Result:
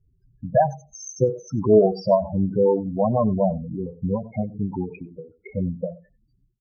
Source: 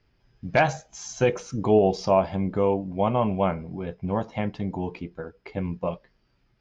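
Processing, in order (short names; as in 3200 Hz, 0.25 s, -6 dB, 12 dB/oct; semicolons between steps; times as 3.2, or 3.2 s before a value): outdoor echo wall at 16 m, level -21 dB; loudest bins only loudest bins 8; on a send: echo 94 ms -23 dB; on the sum: ending taper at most 160 dB/s; gain +5 dB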